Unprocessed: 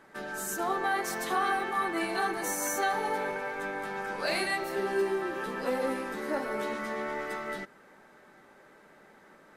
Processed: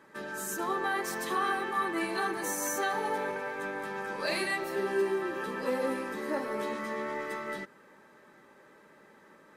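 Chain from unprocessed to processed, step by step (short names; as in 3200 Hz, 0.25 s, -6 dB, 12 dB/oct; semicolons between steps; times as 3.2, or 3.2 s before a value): notch comb 720 Hz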